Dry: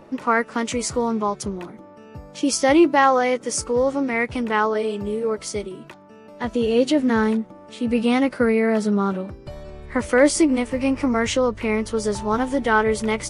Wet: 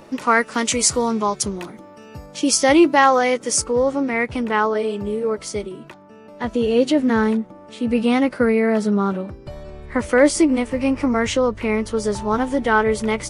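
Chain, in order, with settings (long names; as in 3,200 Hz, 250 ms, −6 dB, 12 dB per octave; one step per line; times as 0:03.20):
high-shelf EQ 2,800 Hz +10.5 dB, from 0:02.26 +5 dB, from 0:03.62 −2 dB
level +1.5 dB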